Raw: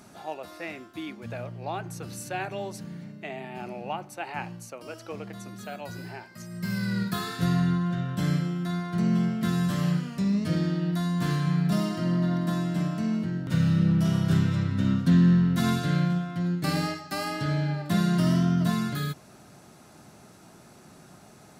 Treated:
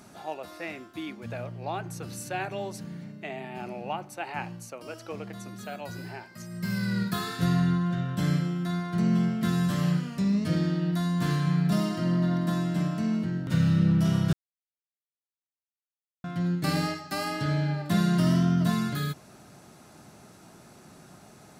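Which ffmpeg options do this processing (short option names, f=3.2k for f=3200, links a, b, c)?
-filter_complex "[0:a]asplit=3[a][b][c];[a]atrim=end=14.33,asetpts=PTS-STARTPTS,afade=t=out:st=14.326:d=0.004:c=hsin[d];[b]atrim=start=14.33:end=16.24,asetpts=PTS-STARTPTS,volume=0[e];[c]atrim=start=16.24,asetpts=PTS-STARTPTS,afade=t=in:d=0.004:c=hsin[f];[d][e][f]concat=n=3:v=0:a=1"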